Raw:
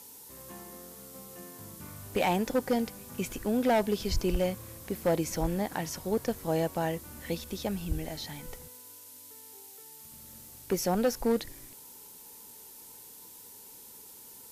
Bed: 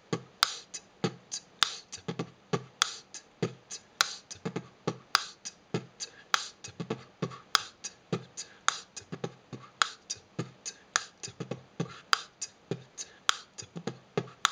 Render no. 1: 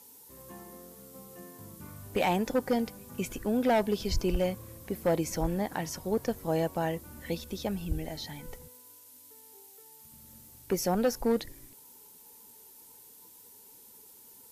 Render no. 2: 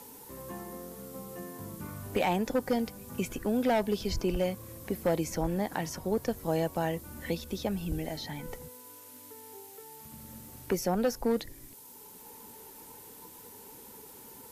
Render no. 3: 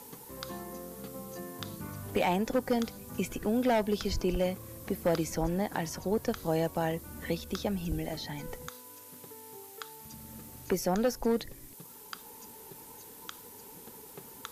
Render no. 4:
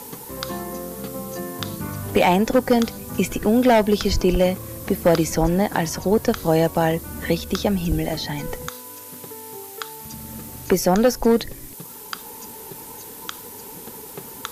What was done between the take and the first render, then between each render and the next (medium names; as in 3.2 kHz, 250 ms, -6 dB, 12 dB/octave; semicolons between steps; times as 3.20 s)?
noise reduction 6 dB, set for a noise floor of -50 dBFS
three bands compressed up and down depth 40%
add bed -18 dB
trim +11.5 dB